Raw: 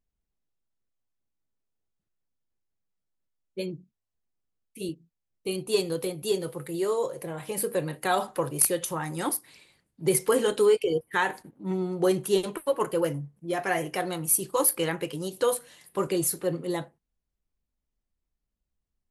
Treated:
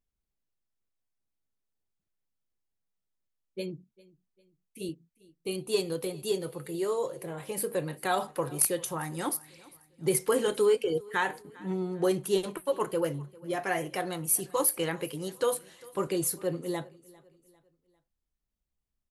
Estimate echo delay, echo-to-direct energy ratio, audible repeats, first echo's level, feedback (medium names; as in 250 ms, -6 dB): 399 ms, -22.0 dB, 2, -23.0 dB, 41%